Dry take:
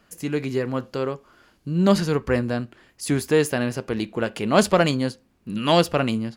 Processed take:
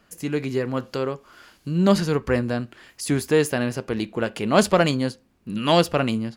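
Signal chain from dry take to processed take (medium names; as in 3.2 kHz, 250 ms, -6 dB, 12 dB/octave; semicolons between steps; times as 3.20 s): 0.77–3.15 s: tape noise reduction on one side only encoder only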